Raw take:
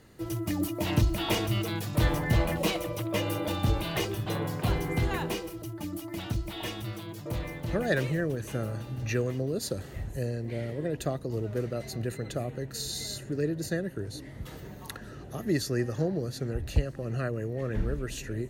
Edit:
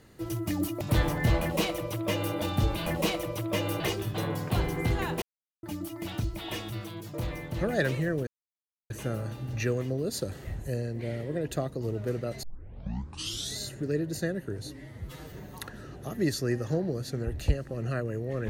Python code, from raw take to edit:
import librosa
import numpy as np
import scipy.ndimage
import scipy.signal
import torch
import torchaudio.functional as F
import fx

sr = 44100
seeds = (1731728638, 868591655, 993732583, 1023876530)

y = fx.edit(x, sr, fx.cut(start_s=0.81, length_s=1.06),
    fx.duplicate(start_s=2.47, length_s=0.94, to_s=3.92),
    fx.silence(start_s=5.34, length_s=0.41),
    fx.insert_silence(at_s=8.39, length_s=0.63),
    fx.tape_start(start_s=11.92, length_s=1.15),
    fx.stretch_span(start_s=14.19, length_s=0.42, factor=1.5), tone=tone)